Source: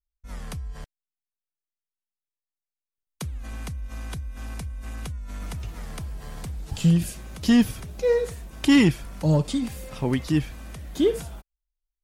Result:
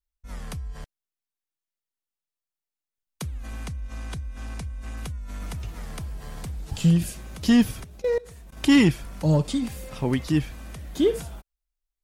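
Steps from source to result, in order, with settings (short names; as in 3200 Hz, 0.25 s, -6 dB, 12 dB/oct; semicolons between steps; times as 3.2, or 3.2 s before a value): 3.64–4.97 LPF 10000 Hz 12 dB/oct; 7.84–8.57 level quantiser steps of 22 dB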